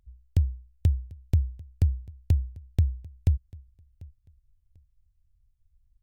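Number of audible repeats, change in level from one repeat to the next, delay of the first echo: 1, no regular repeats, 743 ms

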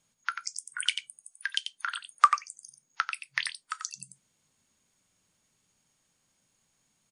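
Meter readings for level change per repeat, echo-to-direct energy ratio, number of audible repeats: no regular repeats, -8.0 dB, 1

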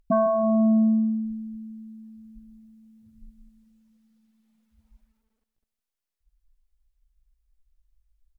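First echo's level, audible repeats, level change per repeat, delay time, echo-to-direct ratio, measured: -16.0 dB, 3, -7.5 dB, 158 ms, -15.0 dB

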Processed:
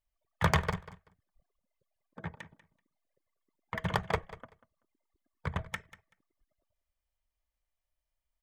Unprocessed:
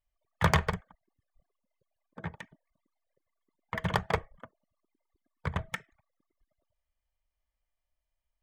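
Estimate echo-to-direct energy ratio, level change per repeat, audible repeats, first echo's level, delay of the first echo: -17.0 dB, -15.5 dB, 2, -17.0 dB, 191 ms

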